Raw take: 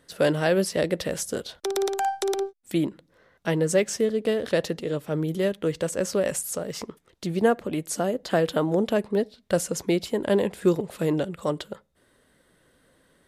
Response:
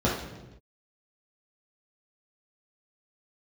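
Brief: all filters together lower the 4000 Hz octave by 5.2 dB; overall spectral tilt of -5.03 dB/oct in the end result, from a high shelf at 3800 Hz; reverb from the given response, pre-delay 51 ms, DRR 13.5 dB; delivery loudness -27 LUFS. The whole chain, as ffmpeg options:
-filter_complex "[0:a]highshelf=f=3.8k:g=-4.5,equalizer=f=4k:t=o:g=-4,asplit=2[a][b];[1:a]atrim=start_sample=2205,adelay=51[c];[b][c]afir=irnorm=-1:irlink=0,volume=-27.5dB[d];[a][d]amix=inputs=2:normalize=0,volume=-1.5dB"

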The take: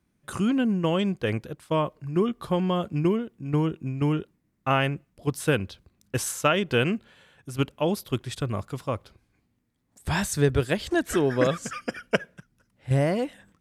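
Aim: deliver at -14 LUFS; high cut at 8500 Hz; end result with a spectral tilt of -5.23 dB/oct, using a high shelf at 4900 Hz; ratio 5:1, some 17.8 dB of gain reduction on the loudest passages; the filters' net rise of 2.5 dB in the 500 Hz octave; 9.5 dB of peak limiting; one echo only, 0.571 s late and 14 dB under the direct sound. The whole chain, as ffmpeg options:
-af "lowpass=8.5k,equalizer=f=500:t=o:g=3,highshelf=f=4.9k:g=3,acompressor=threshold=-36dB:ratio=5,alimiter=level_in=8dB:limit=-24dB:level=0:latency=1,volume=-8dB,aecho=1:1:571:0.2,volume=28dB"

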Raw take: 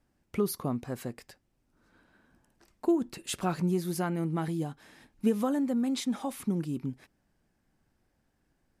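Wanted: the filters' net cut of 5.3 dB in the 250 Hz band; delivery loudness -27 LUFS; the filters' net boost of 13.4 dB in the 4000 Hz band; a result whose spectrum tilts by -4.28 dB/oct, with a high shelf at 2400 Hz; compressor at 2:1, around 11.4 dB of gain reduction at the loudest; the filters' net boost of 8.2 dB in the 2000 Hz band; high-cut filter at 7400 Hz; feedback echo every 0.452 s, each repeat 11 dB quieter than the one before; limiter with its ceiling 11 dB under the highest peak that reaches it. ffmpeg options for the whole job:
-af "lowpass=7.4k,equalizer=f=250:t=o:g=-7.5,equalizer=f=2k:t=o:g=5,highshelf=f=2.4k:g=7.5,equalizer=f=4k:t=o:g=8.5,acompressor=threshold=-42dB:ratio=2,alimiter=level_in=8.5dB:limit=-24dB:level=0:latency=1,volume=-8.5dB,aecho=1:1:452|904|1356:0.282|0.0789|0.0221,volume=16dB"

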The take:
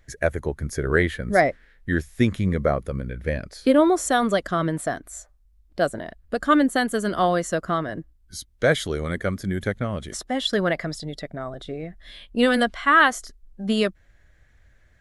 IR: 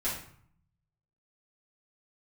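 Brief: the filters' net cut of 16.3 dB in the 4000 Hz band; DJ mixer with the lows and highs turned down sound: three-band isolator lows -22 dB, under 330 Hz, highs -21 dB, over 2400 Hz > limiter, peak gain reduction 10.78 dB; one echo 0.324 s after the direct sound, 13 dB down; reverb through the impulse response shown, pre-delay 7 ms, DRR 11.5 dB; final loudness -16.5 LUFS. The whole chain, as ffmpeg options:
-filter_complex "[0:a]equalizer=f=4k:t=o:g=-8,aecho=1:1:324:0.224,asplit=2[a][b];[1:a]atrim=start_sample=2205,adelay=7[c];[b][c]afir=irnorm=-1:irlink=0,volume=-17.5dB[d];[a][d]amix=inputs=2:normalize=0,acrossover=split=330 2400:gain=0.0794 1 0.0891[e][f][g];[e][f][g]amix=inputs=3:normalize=0,volume=13dB,alimiter=limit=-3.5dB:level=0:latency=1"

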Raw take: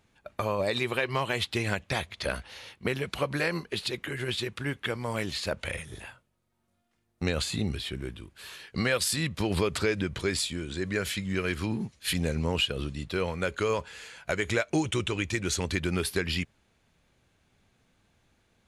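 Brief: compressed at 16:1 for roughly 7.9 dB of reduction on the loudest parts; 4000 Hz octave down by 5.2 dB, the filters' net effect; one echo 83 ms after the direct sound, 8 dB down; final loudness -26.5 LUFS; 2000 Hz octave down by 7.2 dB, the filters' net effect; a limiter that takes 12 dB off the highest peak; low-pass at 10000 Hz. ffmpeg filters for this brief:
-af "lowpass=10k,equalizer=f=2k:t=o:g=-8.5,equalizer=f=4k:t=o:g=-3.5,acompressor=threshold=-31dB:ratio=16,alimiter=level_in=5dB:limit=-24dB:level=0:latency=1,volume=-5dB,aecho=1:1:83:0.398,volume=13dB"

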